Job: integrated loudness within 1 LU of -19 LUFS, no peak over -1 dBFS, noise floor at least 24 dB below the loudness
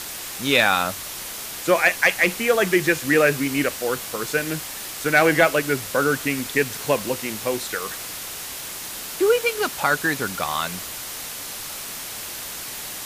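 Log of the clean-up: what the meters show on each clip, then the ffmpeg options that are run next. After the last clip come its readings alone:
noise floor -34 dBFS; noise floor target -47 dBFS; loudness -22.5 LUFS; peak -5.5 dBFS; loudness target -19.0 LUFS
-> -af "afftdn=nr=13:nf=-34"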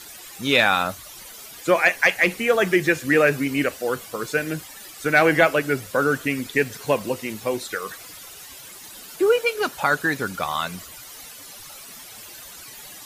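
noise floor -42 dBFS; noise floor target -46 dBFS
-> -af "afftdn=nr=6:nf=-42"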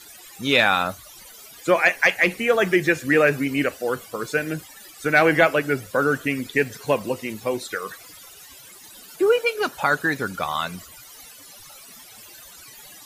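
noise floor -45 dBFS; noise floor target -46 dBFS
-> -af "afftdn=nr=6:nf=-45"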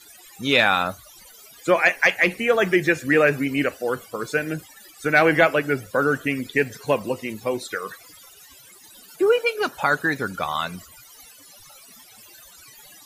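noise floor -48 dBFS; loudness -21.5 LUFS; peak -5.5 dBFS; loudness target -19.0 LUFS
-> -af "volume=2.5dB"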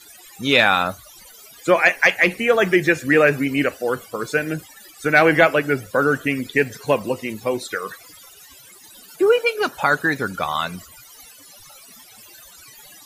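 loudness -19.0 LUFS; peak -3.0 dBFS; noise floor -46 dBFS

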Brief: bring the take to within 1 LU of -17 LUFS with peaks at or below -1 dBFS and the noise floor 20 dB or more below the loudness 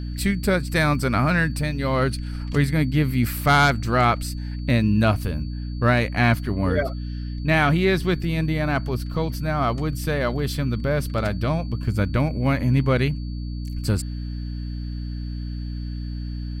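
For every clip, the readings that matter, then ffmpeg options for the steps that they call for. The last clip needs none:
hum 60 Hz; harmonics up to 300 Hz; hum level -27 dBFS; steady tone 4500 Hz; tone level -49 dBFS; loudness -23.0 LUFS; peak -6.5 dBFS; loudness target -17.0 LUFS
-> -af "bandreject=f=60:t=h:w=4,bandreject=f=120:t=h:w=4,bandreject=f=180:t=h:w=4,bandreject=f=240:t=h:w=4,bandreject=f=300:t=h:w=4"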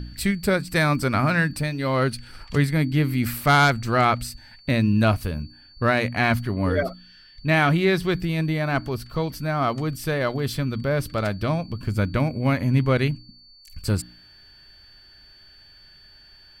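hum none; steady tone 4500 Hz; tone level -49 dBFS
-> -af "bandreject=f=4.5k:w=30"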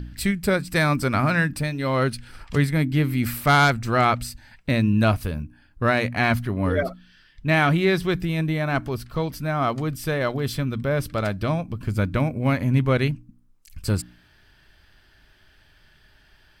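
steady tone none; loudness -23.0 LUFS; peak -7.5 dBFS; loudness target -17.0 LUFS
-> -af "volume=6dB"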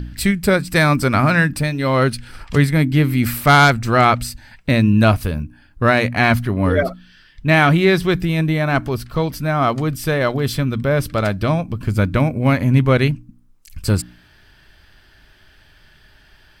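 loudness -17.0 LUFS; peak -1.5 dBFS; noise floor -51 dBFS

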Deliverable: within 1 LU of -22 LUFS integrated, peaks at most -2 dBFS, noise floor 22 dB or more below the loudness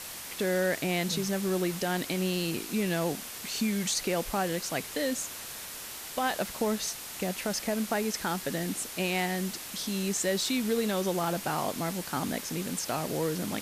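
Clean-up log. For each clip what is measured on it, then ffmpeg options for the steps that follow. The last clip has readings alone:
noise floor -41 dBFS; noise floor target -53 dBFS; loudness -30.5 LUFS; peak -17.0 dBFS; loudness target -22.0 LUFS
-> -af "afftdn=nr=12:nf=-41"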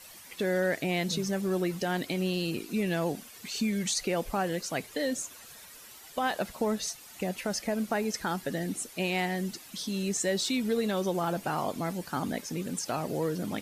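noise floor -50 dBFS; noise floor target -54 dBFS
-> -af "afftdn=nr=6:nf=-50"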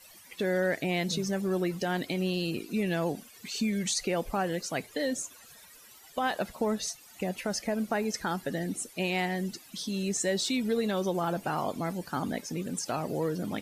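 noise floor -54 dBFS; loudness -31.5 LUFS; peak -18.0 dBFS; loudness target -22.0 LUFS
-> -af "volume=9.5dB"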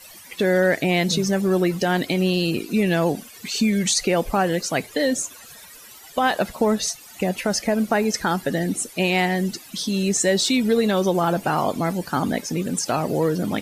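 loudness -22.0 LUFS; peak -8.5 dBFS; noise floor -44 dBFS

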